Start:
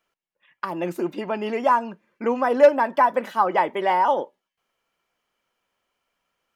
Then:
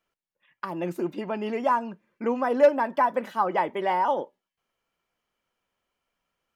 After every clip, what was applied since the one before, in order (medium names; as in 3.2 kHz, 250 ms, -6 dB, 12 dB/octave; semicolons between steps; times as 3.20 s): bass shelf 230 Hz +7 dB; trim -5 dB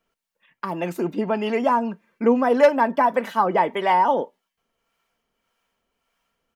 comb 4.4 ms, depth 31%; harmonic tremolo 1.7 Hz, depth 50%, crossover 610 Hz; trim +8 dB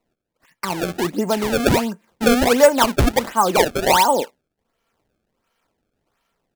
decimation with a swept rate 26×, swing 160% 1.4 Hz; trim +3 dB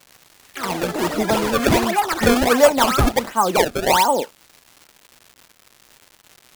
crackle 280 per s -32 dBFS; ever faster or slower copies 119 ms, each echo +6 st, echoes 3, each echo -6 dB; trim -1 dB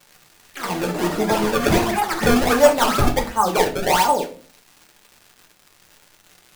reverberation RT60 0.45 s, pre-delay 6 ms, DRR 2.5 dB; trim -3 dB